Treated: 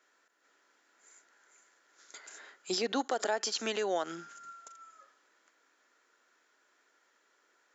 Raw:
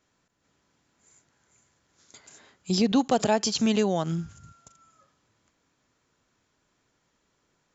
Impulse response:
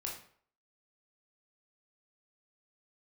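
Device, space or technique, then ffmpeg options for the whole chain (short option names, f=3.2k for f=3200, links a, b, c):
laptop speaker: -filter_complex "[0:a]asettb=1/sr,asplit=3[a][b][c];[a]atrim=end=2.934[d];[b]atrim=start=2.93:end=3.37,asetpts=PTS-STARTPTS,afade=t=in:d=0.004:c=qsin,afade=t=out:st=0.436:d=0.004:c=qsin,equalizer=f=2.6k:t=o:w=0.23:g=-9[e];[c]atrim=start=3.366[f];[d][e]acrossfade=d=0.004:c1=hsin:c2=qsin[g];[g][f]acrossfade=d=0.004:c1=qsin:c2=hsin,highpass=f=340:w=0.5412,highpass=f=340:w=1.3066,equalizer=f=1.4k:t=o:w=0.21:g=7.5,equalizer=f=1.8k:t=o:w=0.46:g=7,alimiter=limit=-21.5dB:level=0:latency=1:release=236"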